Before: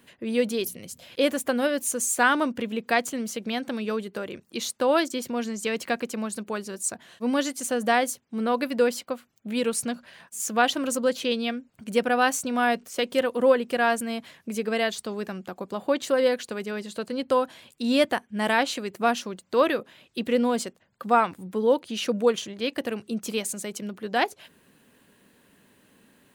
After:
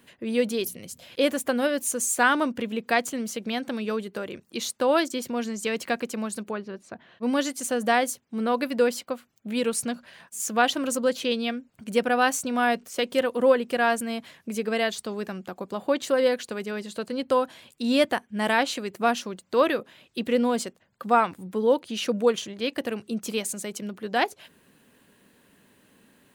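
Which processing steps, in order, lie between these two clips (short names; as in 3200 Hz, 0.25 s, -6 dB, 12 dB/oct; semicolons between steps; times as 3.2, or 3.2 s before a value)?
6.51–7.23 air absorption 310 m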